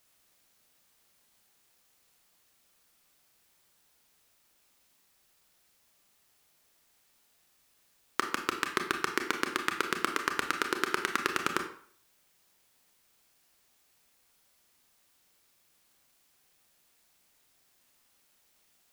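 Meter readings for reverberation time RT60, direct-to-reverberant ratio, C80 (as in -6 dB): 0.55 s, 4.5 dB, 12.0 dB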